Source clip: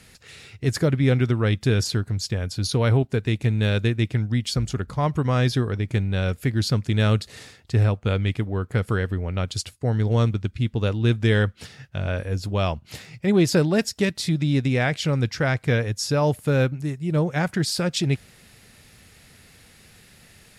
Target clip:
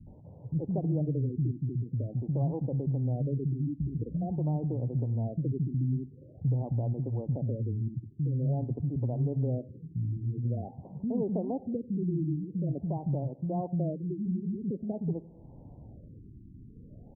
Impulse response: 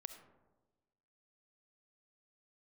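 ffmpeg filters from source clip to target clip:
-filter_complex "[0:a]acrossover=split=190[s0][s1];[s1]adelay=80[s2];[s0][s2]amix=inputs=2:normalize=0,acompressor=threshold=0.00562:ratio=2,asuperstop=centerf=1300:order=8:qfactor=0.83,tiltshelf=f=940:g=4.5,asplit=2[s3][s4];[1:a]atrim=start_sample=2205[s5];[s4][s5]afir=irnorm=-1:irlink=0,volume=0.75[s6];[s3][s6]amix=inputs=2:normalize=0,asetrate=52920,aresample=44100,equalizer=f=550:w=1.5:g=-4.5,afftfilt=real='re*lt(b*sr/1024,380*pow(1600/380,0.5+0.5*sin(2*PI*0.47*pts/sr)))':imag='im*lt(b*sr/1024,380*pow(1600/380,0.5+0.5*sin(2*PI*0.47*pts/sr)))':win_size=1024:overlap=0.75"

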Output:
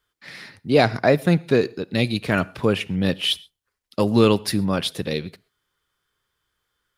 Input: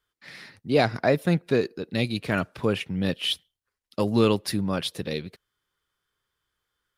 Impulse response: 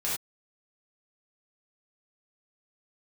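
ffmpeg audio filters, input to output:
-filter_complex "[0:a]asplit=2[s0][s1];[1:a]atrim=start_sample=2205,adelay=33[s2];[s1][s2]afir=irnorm=-1:irlink=0,volume=0.0355[s3];[s0][s3]amix=inputs=2:normalize=0,volume=1.68"

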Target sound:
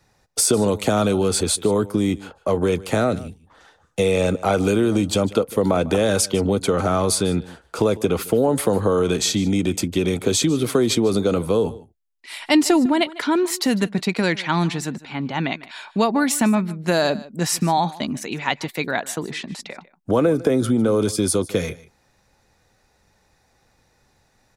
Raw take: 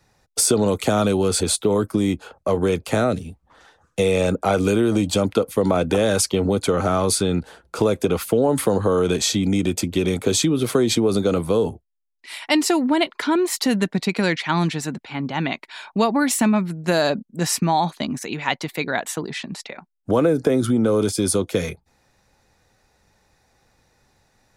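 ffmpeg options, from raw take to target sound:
-filter_complex "[0:a]asettb=1/sr,asplit=3[s0][s1][s2];[s0]atrim=end=12.404[s3];[s1]atrim=start=12.4:end=12.86,asetpts=PTS-STARTPTS,afade=t=in:d=0.004:c=qsin,afade=t=out:st=0.456:d=0.004:c=qsin,lowshelf=f=230:g=10[s4];[s2]atrim=start=12.856[s5];[s3][s4]acrossfade=d=0.004:c1=hsin:c2=qsin[s6];[s6][s5]acrossfade=d=0.004:c1=qsin:c2=hsin,aecho=1:1:151:0.106"

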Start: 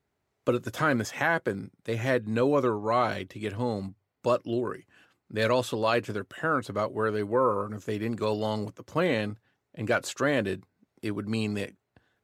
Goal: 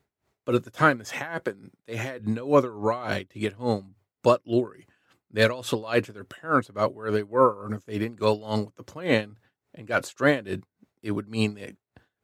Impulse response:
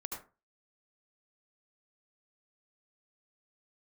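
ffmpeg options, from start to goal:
-filter_complex "[0:a]asettb=1/sr,asplit=3[s0][s1][s2];[s0]atrim=end=1.424[s3];[s1]atrim=start=1.42:end=2.2,asetpts=PTS-STARTPTS,afade=t=in:d=0.004:c=qsin,afade=t=out:st=0.776:d=0.004:c=qsin,highpass=f=210:p=1[s4];[s2]atrim=start=2.196[s5];[s3][s4]acrossfade=d=0.004:c1=hsin:c2=qsin[s6];[s6][s5]acrossfade=d=0.004:c1=qsin:c2=hsin,aeval=exprs='val(0)*pow(10,-21*(0.5-0.5*cos(2*PI*3.5*n/s))/20)':c=same,volume=2.37"

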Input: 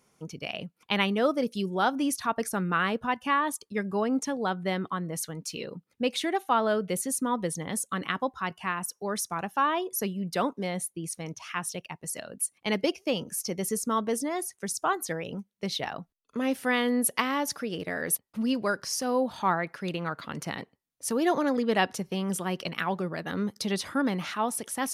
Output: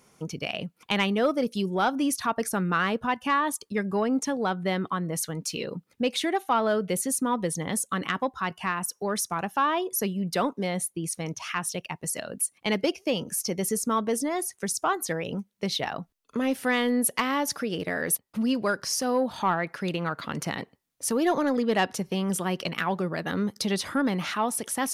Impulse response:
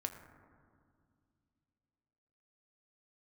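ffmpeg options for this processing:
-filter_complex "[0:a]asplit=2[s0][s1];[s1]acompressor=threshold=0.0126:ratio=6,volume=1.26[s2];[s0][s2]amix=inputs=2:normalize=0,asoftclip=type=tanh:threshold=0.251"

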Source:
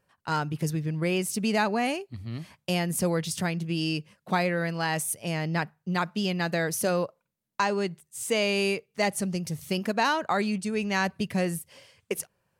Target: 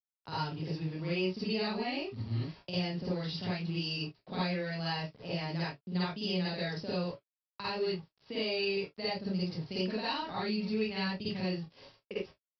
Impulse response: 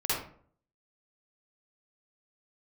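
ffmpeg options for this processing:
-filter_complex "[0:a]acrossover=split=200|2300[s0][s1][s2];[s0]acompressor=threshold=0.00708:ratio=4[s3];[s1]acompressor=threshold=0.0112:ratio=4[s4];[s2]acompressor=threshold=0.02:ratio=4[s5];[s3][s4][s5]amix=inputs=3:normalize=0,aresample=11025,aeval=exprs='val(0)*gte(abs(val(0)),0.00376)':c=same,aresample=44100,equalizer=f=1800:t=o:w=1.8:g=-7.5,aecho=1:1:27|43:0.299|0.133[s6];[1:a]atrim=start_sample=2205,atrim=end_sample=4410[s7];[s6][s7]afir=irnorm=-1:irlink=0,volume=0.631"

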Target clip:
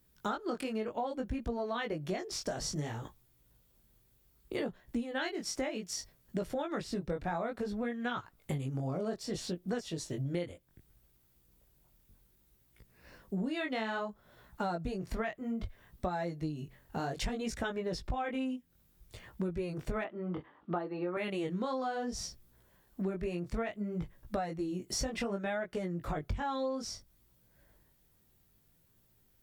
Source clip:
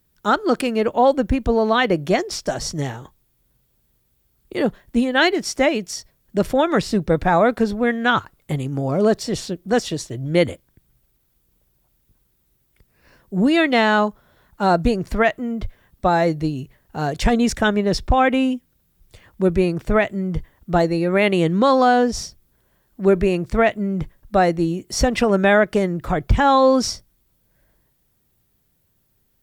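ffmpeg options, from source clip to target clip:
-filter_complex "[0:a]flanger=delay=16.5:depth=6.6:speed=0.62,asettb=1/sr,asplit=3[s0][s1][s2];[s0]atrim=end=20.044[s3];[s1]atrim=start=20.04:end=21.17,asetpts=PTS-STARTPTS,afade=t=in:d=0.004:c=qsin,afade=t=out:st=1.126:d=0.004:c=qsin,highpass=250,equalizer=f=310:t=q:w=4:g=6,equalizer=f=860:t=q:w=4:g=6,equalizer=f=1200:t=q:w=4:g=8,equalizer=f=2100:t=q:w=4:g=-5,lowpass=f=3200:w=0.5412,lowpass=f=3200:w=1.3066[s4];[s2]atrim=start=21.166[s5];[s3][s4]acrossfade=d=0.004:c1=hsin:c2=qsin[s6];[s6][s5]acrossfade=d=0.004:c1=qsin:c2=hsin,acompressor=threshold=0.0224:ratio=8"

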